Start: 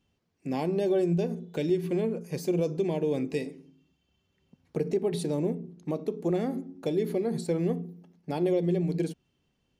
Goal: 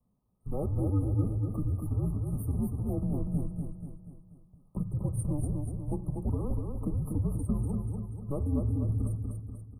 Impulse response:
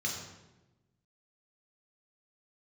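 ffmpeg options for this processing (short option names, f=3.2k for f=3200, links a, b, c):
-filter_complex "[0:a]afreqshift=-280,acrossover=split=270|630|4300[a][b][c][d];[a]alimiter=level_in=0.5dB:limit=-24dB:level=0:latency=1:release=224,volume=-0.5dB[e];[e][b][c][d]amix=inputs=4:normalize=0,aecho=1:1:242|484|726|968|1210|1452:0.596|0.292|0.143|0.0701|0.0343|0.0168,afftfilt=real='re*(1-between(b*sr/4096,1300,8500))':imag='im*(1-between(b*sr/4096,1300,8500))':win_size=4096:overlap=0.75"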